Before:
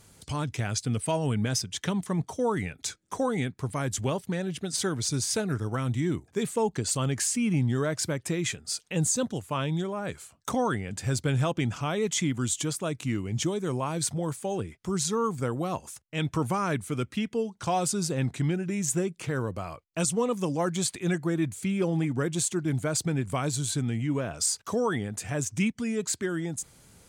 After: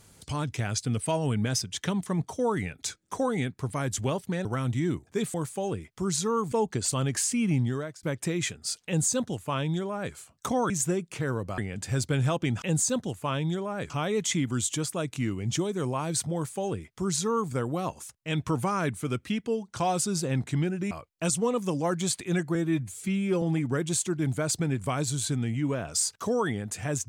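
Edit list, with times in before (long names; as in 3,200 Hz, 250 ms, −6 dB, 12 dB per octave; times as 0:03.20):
0:04.45–0:05.66: remove
0:07.64–0:08.06: fade out
0:08.89–0:10.17: duplicate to 0:11.77
0:14.21–0:15.39: duplicate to 0:06.55
0:18.78–0:19.66: move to 0:10.73
0:21.30–0:21.88: time-stretch 1.5×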